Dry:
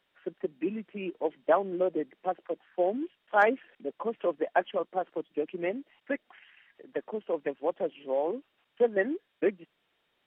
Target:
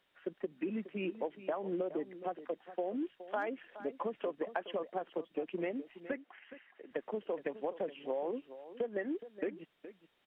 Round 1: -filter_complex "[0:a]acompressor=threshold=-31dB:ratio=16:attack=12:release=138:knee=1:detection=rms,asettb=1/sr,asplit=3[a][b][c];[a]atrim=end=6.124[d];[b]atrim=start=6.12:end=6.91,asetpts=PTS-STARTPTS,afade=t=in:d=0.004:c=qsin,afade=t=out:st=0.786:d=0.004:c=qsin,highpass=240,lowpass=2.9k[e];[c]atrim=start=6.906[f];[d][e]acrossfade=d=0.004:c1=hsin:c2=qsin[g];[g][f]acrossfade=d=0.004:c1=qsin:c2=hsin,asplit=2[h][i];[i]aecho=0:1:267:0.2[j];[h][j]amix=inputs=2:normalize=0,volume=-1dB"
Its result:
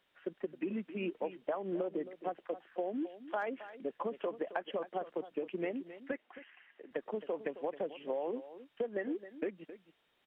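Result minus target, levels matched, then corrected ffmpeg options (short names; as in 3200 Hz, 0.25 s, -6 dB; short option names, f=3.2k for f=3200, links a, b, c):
echo 0.152 s early
-filter_complex "[0:a]acompressor=threshold=-31dB:ratio=16:attack=12:release=138:knee=1:detection=rms,asettb=1/sr,asplit=3[a][b][c];[a]atrim=end=6.124[d];[b]atrim=start=6.12:end=6.91,asetpts=PTS-STARTPTS,afade=t=in:d=0.004:c=qsin,afade=t=out:st=0.786:d=0.004:c=qsin,highpass=240,lowpass=2.9k[e];[c]atrim=start=6.906[f];[d][e]acrossfade=d=0.004:c1=hsin:c2=qsin[g];[g][f]acrossfade=d=0.004:c1=qsin:c2=hsin,asplit=2[h][i];[i]aecho=0:1:419:0.2[j];[h][j]amix=inputs=2:normalize=0,volume=-1dB"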